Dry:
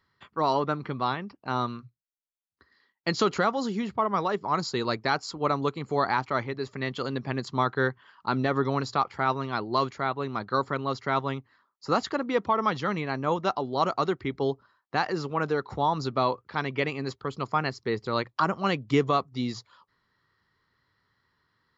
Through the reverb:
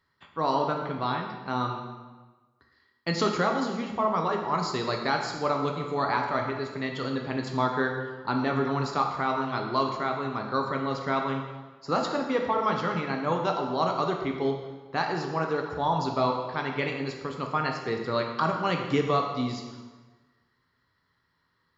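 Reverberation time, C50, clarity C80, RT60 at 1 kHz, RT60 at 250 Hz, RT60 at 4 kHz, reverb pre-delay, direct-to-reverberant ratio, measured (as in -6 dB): 1.3 s, 4.5 dB, 6.5 dB, 1.3 s, 1.4 s, 1.1 s, 5 ms, 1.5 dB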